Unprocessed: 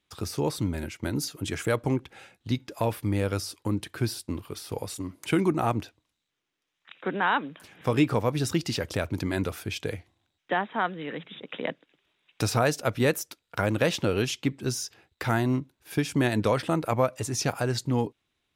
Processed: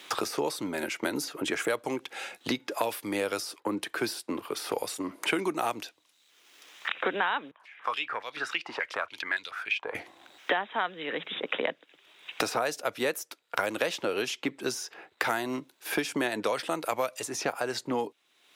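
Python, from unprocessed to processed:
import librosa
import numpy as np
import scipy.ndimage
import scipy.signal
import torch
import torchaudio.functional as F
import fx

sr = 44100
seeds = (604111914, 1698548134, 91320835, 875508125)

y = fx.band_widen(x, sr, depth_pct=40, at=(3.6, 4.59))
y = fx.filter_held_bandpass(y, sr, hz=7.0, low_hz=970.0, high_hz=3700.0, at=(7.51, 9.95))
y = scipy.signal.sosfilt(scipy.signal.butter(2, 420.0, 'highpass', fs=sr, output='sos'), y)
y = fx.band_squash(y, sr, depth_pct=100)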